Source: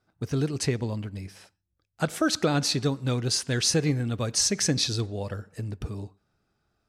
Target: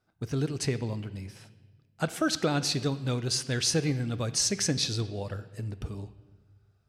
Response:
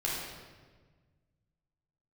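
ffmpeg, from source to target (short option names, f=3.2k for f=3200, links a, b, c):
-filter_complex "[0:a]asplit=2[a][b];[b]equalizer=f=2.9k:t=o:w=0.55:g=9[c];[1:a]atrim=start_sample=2205[d];[c][d]afir=irnorm=-1:irlink=0,volume=-20.5dB[e];[a][e]amix=inputs=2:normalize=0,volume=-3.5dB"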